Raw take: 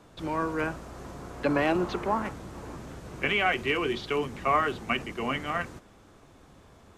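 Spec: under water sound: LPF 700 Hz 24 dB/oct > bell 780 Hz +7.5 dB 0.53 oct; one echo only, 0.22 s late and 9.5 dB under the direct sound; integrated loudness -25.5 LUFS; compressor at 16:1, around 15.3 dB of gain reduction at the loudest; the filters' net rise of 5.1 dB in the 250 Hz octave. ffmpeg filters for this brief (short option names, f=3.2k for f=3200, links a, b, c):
-af "equalizer=f=250:t=o:g=6.5,acompressor=threshold=-34dB:ratio=16,lowpass=f=700:w=0.5412,lowpass=f=700:w=1.3066,equalizer=f=780:t=o:w=0.53:g=7.5,aecho=1:1:220:0.335,volume=14.5dB"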